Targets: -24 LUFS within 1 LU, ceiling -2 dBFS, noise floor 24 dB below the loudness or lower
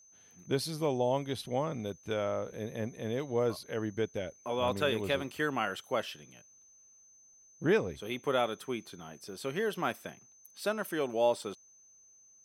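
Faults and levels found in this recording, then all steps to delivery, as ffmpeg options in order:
steady tone 6200 Hz; tone level -58 dBFS; loudness -33.5 LUFS; peak -16.0 dBFS; loudness target -24.0 LUFS
-> -af "bandreject=f=6.2k:w=30"
-af "volume=9.5dB"

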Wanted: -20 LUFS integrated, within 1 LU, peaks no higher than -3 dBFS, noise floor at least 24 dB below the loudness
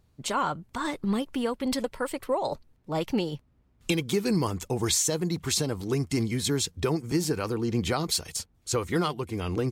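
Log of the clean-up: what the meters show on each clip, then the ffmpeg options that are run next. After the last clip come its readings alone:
loudness -28.5 LUFS; peak -13.0 dBFS; loudness target -20.0 LUFS
-> -af "volume=8.5dB"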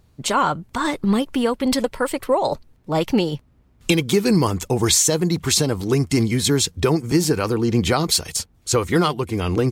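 loudness -20.0 LUFS; peak -4.5 dBFS; noise floor -57 dBFS

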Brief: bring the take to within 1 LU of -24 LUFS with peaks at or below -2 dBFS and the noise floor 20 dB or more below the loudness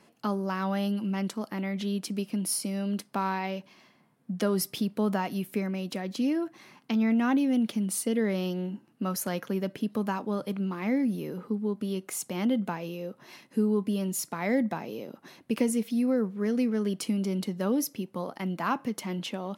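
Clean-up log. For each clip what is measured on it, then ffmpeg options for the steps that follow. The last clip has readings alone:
loudness -30.0 LUFS; peak -14.0 dBFS; loudness target -24.0 LUFS
-> -af "volume=6dB"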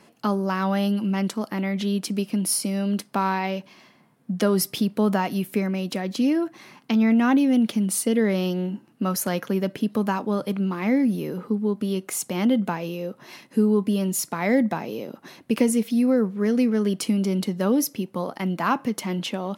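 loudness -24.0 LUFS; peak -8.0 dBFS; noise floor -56 dBFS

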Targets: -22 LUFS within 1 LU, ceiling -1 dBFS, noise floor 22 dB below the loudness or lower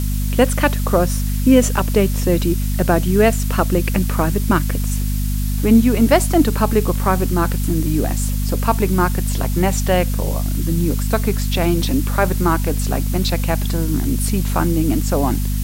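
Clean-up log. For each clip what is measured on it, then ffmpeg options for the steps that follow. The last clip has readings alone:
hum 50 Hz; harmonics up to 250 Hz; hum level -17 dBFS; noise floor -20 dBFS; noise floor target -40 dBFS; loudness -18.0 LUFS; peak -1.0 dBFS; loudness target -22.0 LUFS
-> -af "bandreject=f=50:t=h:w=6,bandreject=f=100:t=h:w=6,bandreject=f=150:t=h:w=6,bandreject=f=200:t=h:w=6,bandreject=f=250:t=h:w=6"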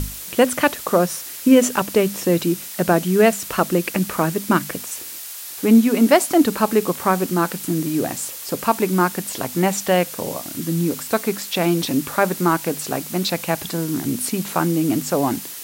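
hum none; noise floor -34 dBFS; noise floor target -42 dBFS
-> -af "afftdn=nr=8:nf=-34"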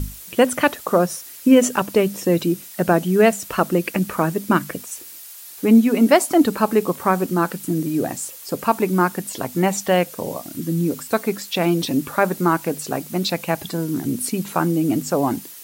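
noise floor -39 dBFS; noise floor target -42 dBFS
-> -af "afftdn=nr=6:nf=-39"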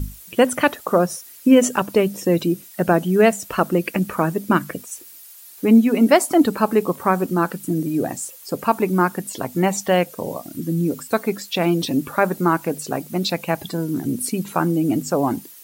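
noise floor -43 dBFS; loudness -20.0 LUFS; peak -2.5 dBFS; loudness target -22.0 LUFS
-> -af "volume=-2dB"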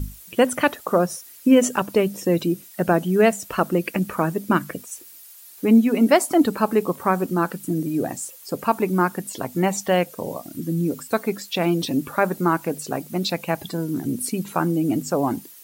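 loudness -22.0 LUFS; peak -4.5 dBFS; noise floor -45 dBFS

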